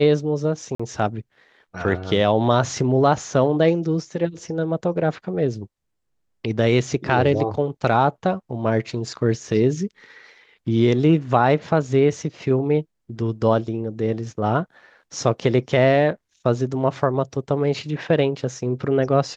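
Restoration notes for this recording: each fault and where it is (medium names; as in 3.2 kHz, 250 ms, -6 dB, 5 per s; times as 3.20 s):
0.75–0.80 s: dropout 45 ms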